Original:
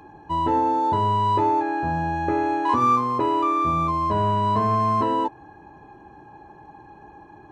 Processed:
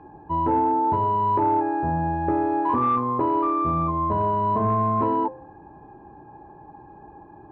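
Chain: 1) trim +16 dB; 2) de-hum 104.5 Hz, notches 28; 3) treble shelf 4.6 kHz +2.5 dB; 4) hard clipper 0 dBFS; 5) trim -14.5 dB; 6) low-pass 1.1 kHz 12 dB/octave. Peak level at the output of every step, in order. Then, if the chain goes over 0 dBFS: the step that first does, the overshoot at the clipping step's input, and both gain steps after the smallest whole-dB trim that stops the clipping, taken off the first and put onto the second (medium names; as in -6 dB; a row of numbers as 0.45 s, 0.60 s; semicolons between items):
+5.5 dBFS, +6.0 dBFS, +6.0 dBFS, 0.0 dBFS, -14.5 dBFS, -14.0 dBFS; step 1, 6.0 dB; step 1 +10 dB, step 5 -8.5 dB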